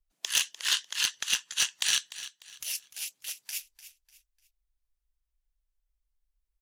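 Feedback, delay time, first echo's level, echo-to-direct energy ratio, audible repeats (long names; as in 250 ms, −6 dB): 33%, 298 ms, −14.5 dB, −14.0 dB, 3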